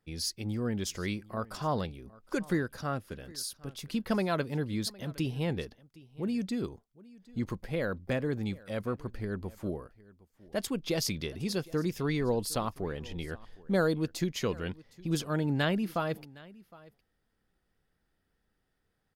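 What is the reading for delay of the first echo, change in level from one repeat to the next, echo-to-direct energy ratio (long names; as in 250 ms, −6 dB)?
762 ms, repeats not evenly spaced, −22.0 dB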